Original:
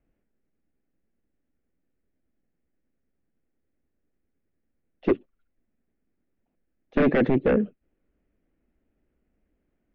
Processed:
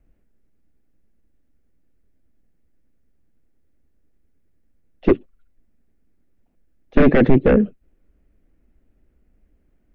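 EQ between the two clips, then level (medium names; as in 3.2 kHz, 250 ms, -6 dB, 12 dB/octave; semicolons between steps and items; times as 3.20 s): bass shelf 100 Hz +11.5 dB; +5.5 dB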